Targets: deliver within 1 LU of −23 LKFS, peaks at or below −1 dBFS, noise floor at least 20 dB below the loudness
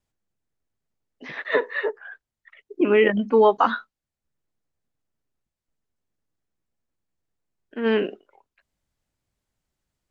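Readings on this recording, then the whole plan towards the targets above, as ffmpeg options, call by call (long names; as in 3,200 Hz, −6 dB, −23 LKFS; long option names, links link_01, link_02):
integrated loudness −21.5 LKFS; sample peak −5.0 dBFS; target loudness −23.0 LKFS
→ -af "volume=-1.5dB"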